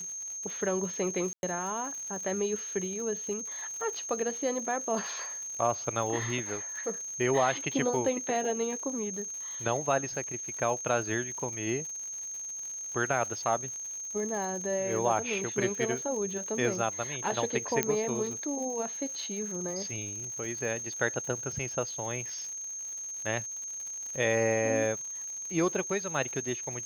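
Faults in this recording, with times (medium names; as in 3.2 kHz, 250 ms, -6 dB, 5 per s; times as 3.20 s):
crackle 130 per s -39 dBFS
whine 6.4 kHz -36 dBFS
1.33–1.43 s: dropout 101 ms
17.83 s: pop -10 dBFS
20.44 s: dropout 3.8 ms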